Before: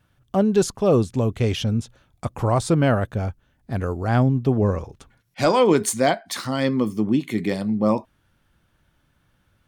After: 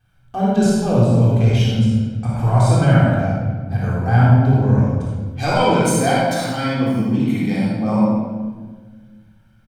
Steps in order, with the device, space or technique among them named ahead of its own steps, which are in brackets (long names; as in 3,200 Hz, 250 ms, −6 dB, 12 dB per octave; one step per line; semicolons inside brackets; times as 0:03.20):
microphone above a desk (comb filter 1.3 ms, depth 51%; convolution reverb RT60 0.30 s, pre-delay 50 ms, DRR 1 dB)
rectangular room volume 1,400 cubic metres, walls mixed, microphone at 3.7 metres
level −6.5 dB